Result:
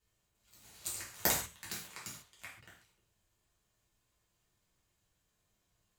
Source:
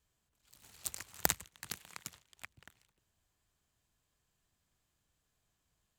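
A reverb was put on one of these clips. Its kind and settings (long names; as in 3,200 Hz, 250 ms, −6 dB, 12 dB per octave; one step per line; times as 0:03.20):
reverb whose tail is shaped and stops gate 170 ms falling, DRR −6.5 dB
level −5 dB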